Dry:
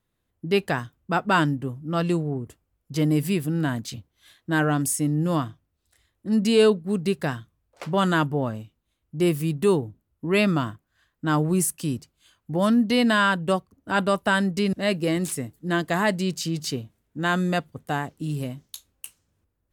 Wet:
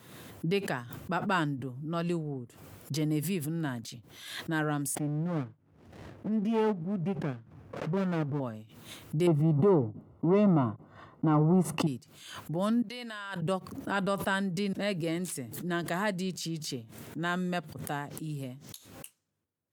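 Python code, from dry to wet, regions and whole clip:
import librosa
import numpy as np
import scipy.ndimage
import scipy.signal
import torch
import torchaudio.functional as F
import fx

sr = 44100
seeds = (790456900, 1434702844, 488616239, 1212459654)

y = fx.chain(x, sr, fx.moving_average(points=11),
    fx.running_max(window=33), at=(4.95, 8.4))
y = fx.chain(y, sr, fx.leveller(passes=3),
    fx.savgol(points=65), at=(9.27, 11.87))
y = fx.chain(y, sr, fx.highpass(hz=900.0, slope=6),
    fx.level_steps(step_db=16), at=(12.82, 13.42))
y = scipy.signal.sosfilt(scipy.signal.butter(4, 110.0, 'highpass', fs=sr, output='sos'), y)
y = fx.pre_swell(y, sr, db_per_s=57.0)
y = F.gain(torch.from_numpy(y), -8.5).numpy()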